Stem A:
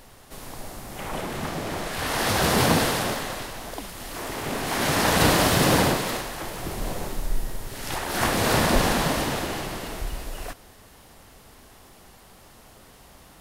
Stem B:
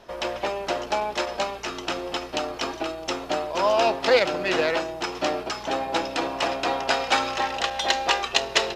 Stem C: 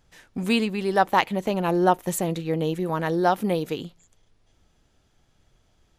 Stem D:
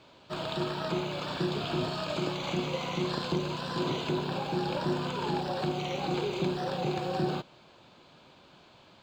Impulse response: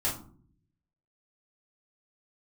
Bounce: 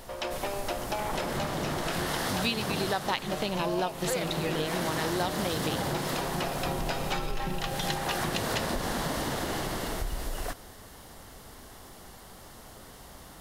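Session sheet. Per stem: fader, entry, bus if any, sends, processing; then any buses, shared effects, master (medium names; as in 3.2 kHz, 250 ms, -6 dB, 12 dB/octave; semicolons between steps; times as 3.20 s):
+2.0 dB, 0.00 s, no send, peaking EQ 2.5 kHz -7 dB 0.24 oct; compression 2:1, threshold -27 dBFS, peak gain reduction 7.5 dB
-4.5 dB, 0.00 s, no send, none
0.0 dB, 1.95 s, no send, peaking EQ 3.9 kHz +14.5 dB 1.3 oct
-5.0 dB, 1.05 s, no send, tone controls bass +10 dB, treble -5 dB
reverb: none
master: compression 4:1, threshold -28 dBFS, peak gain reduction 15 dB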